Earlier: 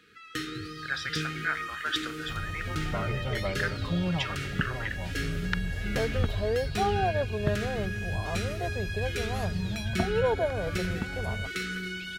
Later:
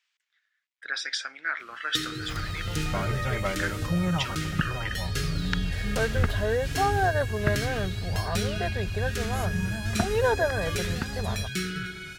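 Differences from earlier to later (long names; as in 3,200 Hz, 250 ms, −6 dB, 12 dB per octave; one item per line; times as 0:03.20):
first sound: entry +1.60 s
second sound: add parametric band 1,700 Hz +12.5 dB 1.2 octaves
master: add bass and treble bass +3 dB, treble +8 dB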